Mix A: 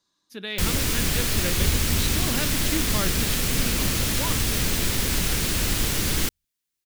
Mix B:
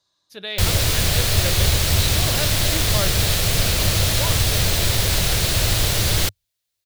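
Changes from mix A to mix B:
first sound +3.0 dB; master: add fifteen-band EQ 100 Hz +9 dB, 250 Hz -10 dB, 630 Hz +8 dB, 4000 Hz +5 dB

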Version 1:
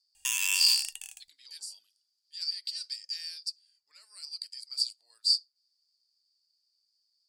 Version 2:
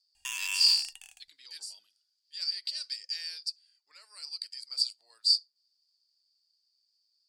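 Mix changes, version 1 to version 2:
speech +7.5 dB; master: add high shelf 4100 Hz -11.5 dB

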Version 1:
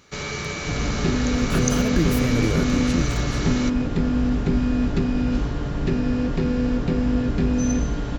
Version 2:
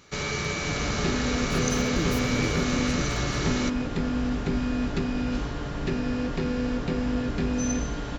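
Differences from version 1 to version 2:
speech -8.0 dB; second sound: add low shelf 430 Hz -7.5 dB

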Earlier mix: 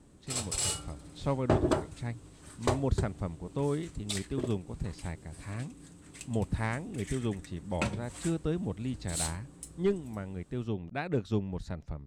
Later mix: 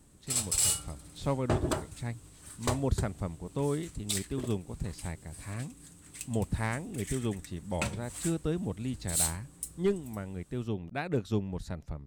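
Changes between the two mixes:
background: add bell 390 Hz -5.5 dB 2.6 oct; master: remove air absorption 51 m

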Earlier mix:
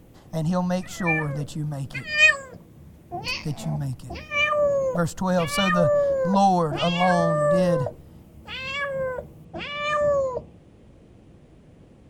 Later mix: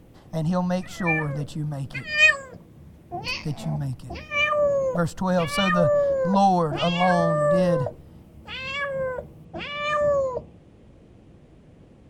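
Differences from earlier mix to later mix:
speech: add bell 6800 Hz -6 dB 0.21 oct; master: add high shelf 9100 Hz -6 dB

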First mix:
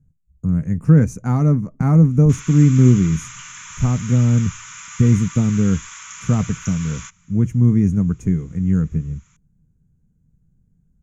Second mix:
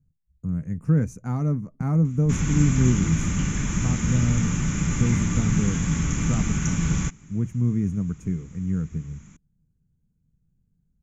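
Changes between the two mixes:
speech -8.5 dB; background: remove rippled Chebyshev high-pass 920 Hz, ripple 3 dB

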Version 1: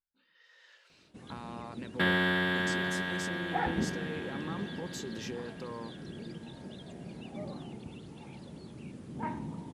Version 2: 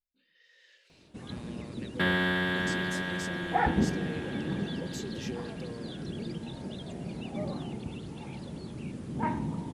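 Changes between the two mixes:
speech: add band shelf 1000 Hz -12.5 dB 1.3 oct; first sound +5.5 dB; master: add low shelf 76 Hz +6 dB

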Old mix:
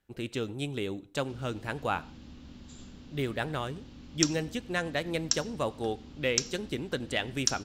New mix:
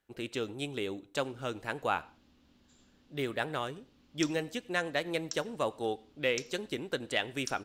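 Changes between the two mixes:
background -12.0 dB; master: add tone controls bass -8 dB, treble -1 dB

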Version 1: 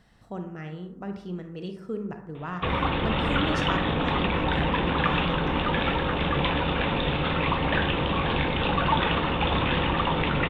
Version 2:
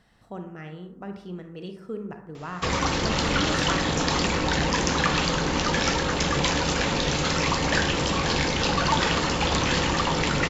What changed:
background: remove rippled Chebyshev low-pass 3700 Hz, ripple 3 dB; master: add low shelf 240 Hz -4 dB

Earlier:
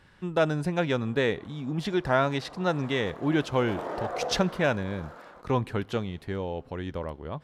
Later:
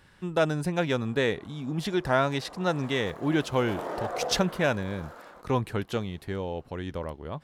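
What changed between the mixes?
speech: send off; master: add high shelf 8100 Hz +11 dB

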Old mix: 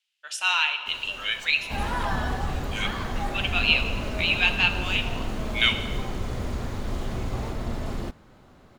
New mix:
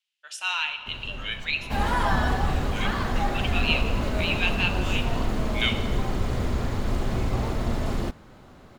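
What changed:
speech -4.5 dB; first sound: add tone controls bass +13 dB, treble -11 dB; second sound +4.0 dB

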